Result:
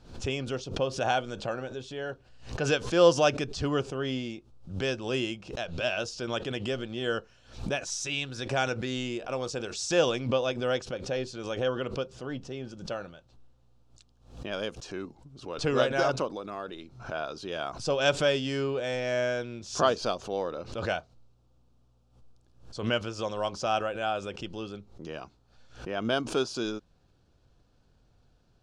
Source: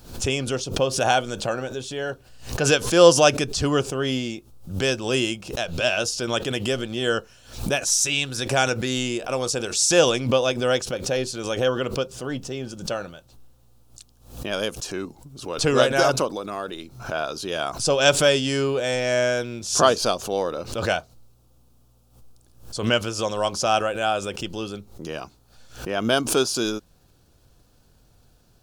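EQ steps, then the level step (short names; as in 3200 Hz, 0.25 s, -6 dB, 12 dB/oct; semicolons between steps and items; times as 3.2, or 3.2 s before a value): air absorption 110 m; -6.5 dB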